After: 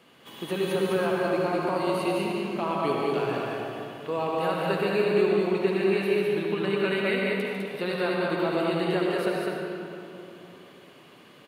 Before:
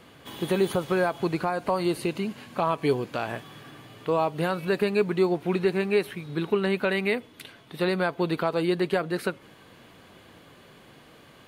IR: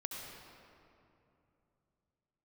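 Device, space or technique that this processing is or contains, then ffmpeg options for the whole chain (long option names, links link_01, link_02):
stadium PA: -filter_complex "[0:a]highpass=160,equalizer=frequency=2800:width_type=o:width=0.23:gain=5,aecho=1:1:148.7|204.1:0.355|0.708[link_01];[1:a]atrim=start_sample=2205[link_02];[link_01][link_02]afir=irnorm=-1:irlink=0,volume=-2dB"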